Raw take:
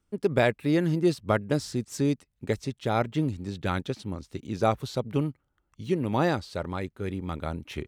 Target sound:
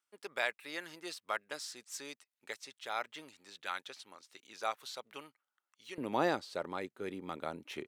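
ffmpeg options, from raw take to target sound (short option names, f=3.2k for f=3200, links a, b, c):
-af "asetnsamples=n=441:p=0,asendcmd='5.98 highpass f 310',highpass=1.1k,volume=-4.5dB"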